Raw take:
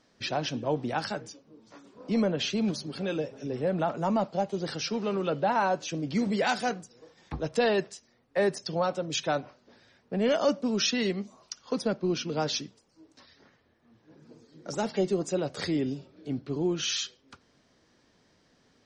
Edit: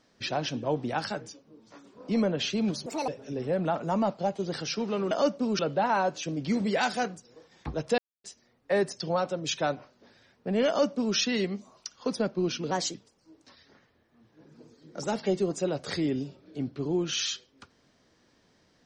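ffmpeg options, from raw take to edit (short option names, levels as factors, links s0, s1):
-filter_complex "[0:a]asplit=9[s0][s1][s2][s3][s4][s5][s6][s7][s8];[s0]atrim=end=2.864[s9];[s1]atrim=start=2.86:end=3.22,asetpts=PTS-STARTPTS,asetrate=71883,aresample=44100[s10];[s2]atrim=start=3.216:end=5.252[s11];[s3]atrim=start=10.338:end=10.822[s12];[s4]atrim=start=5.248:end=7.64,asetpts=PTS-STARTPTS,afade=t=out:st=2.388:d=0.004:c=hsin[s13];[s5]atrim=start=7.64:end=7.9,asetpts=PTS-STARTPTS,volume=0[s14];[s6]atrim=start=7.9:end=12.374,asetpts=PTS-STARTPTS,afade=t=in:d=0.004:c=hsin[s15];[s7]atrim=start=12.37:end=12.65,asetpts=PTS-STARTPTS,asetrate=52920,aresample=44100[s16];[s8]atrim=start=12.646[s17];[s9][s10]acrossfade=d=0.004:c1=hsin:c2=hsin[s18];[s18][s11]acrossfade=d=0.004:c1=hsin:c2=hsin[s19];[s19][s12]acrossfade=d=0.004:c1=hsin:c2=hsin[s20];[s13][s14][s15]concat=n=3:v=0:a=1[s21];[s20][s21]acrossfade=d=0.004:c1=hsin:c2=hsin[s22];[s22][s16]acrossfade=d=0.004:c1=hsin:c2=hsin[s23];[s23][s17]acrossfade=d=0.004:c1=hsin:c2=hsin"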